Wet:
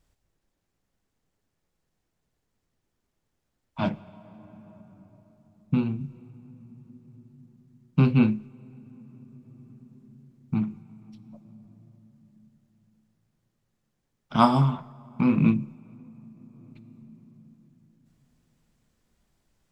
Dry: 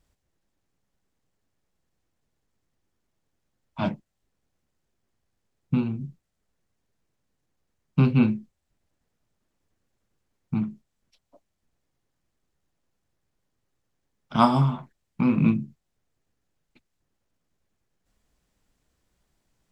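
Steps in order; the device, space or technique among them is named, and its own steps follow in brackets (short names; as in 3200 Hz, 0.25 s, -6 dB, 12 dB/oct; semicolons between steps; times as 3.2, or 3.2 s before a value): compressed reverb return (on a send at -8 dB: reverb RT60 3.2 s, pre-delay 13 ms + compressor 12:1, threshold -36 dBFS, peak gain reduction 20.5 dB)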